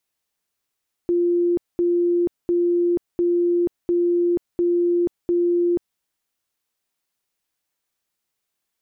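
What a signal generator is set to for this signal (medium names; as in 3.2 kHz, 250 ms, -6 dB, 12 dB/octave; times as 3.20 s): tone bursts 348 Hz, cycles 168, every 0.70 s, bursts 7, -16 dBFS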